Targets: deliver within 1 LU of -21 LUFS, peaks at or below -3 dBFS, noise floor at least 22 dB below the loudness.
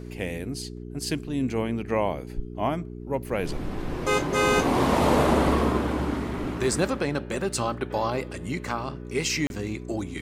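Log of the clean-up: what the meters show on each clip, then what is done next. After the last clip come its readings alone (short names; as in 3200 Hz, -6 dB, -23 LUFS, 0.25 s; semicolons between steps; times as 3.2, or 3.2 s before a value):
dropouts 1; longest dropout 31 ms; hum 60 Hz; harmonics up to 420 Hz; hum level -35 dBFS; loudness -26.5 LUFS; peak -9.0 dBFS; loudness target -21.0 LUFS
-> interpolate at 9.47, 31 ms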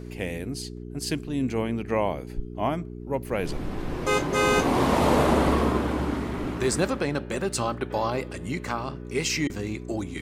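dropouts 0; hum 60 Hz; harmonics up to 420 Hz; hum level -35 dBFS
-> de-hum 60 Hz, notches 7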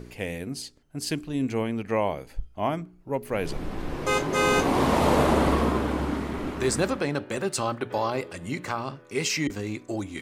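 hum none; loudness -27.0 LUFS; peak -9.5 dBFS; loudness target -21.0 LUFS
-> gain +6 dB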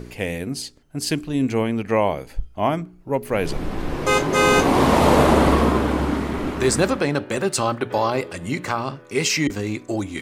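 loudness -21.0 LUFS; peak -3.5 dBFS; noise floor -46 dBFS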